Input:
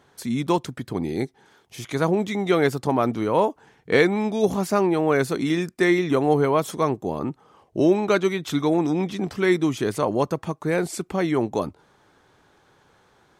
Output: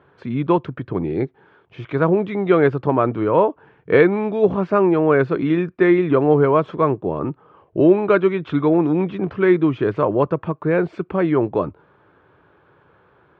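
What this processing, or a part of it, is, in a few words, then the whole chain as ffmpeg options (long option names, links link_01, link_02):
bass cabinet: -af "highpass=68,equalizer=frequency=230:width_type=q:width=4:gain=-8,equalizer=frequency=780:width_type=q:width=4:gain=-7,equalizer=frequency=2000:width_type=q:width=4:gain=-8,lowpass=frequency=2400:width=0.5412,lowpass=frequency=2400:width=1.3066,volume=6dB"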